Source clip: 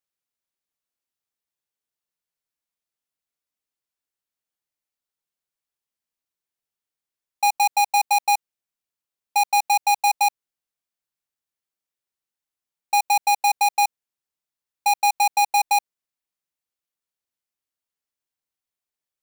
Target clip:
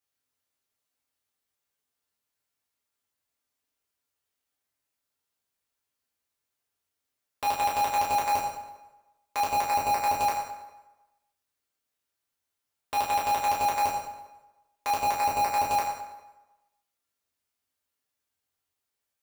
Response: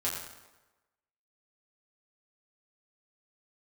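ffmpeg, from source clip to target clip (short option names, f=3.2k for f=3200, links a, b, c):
-filter_complex "[0:a]aeval=exprs='(mod(16.8*val(0)+1,2)-1)/16.8':c=same[a];[1:a]atrim=start_sample=2205[b];[a][b]afir=irnorm=-1:irlink=0"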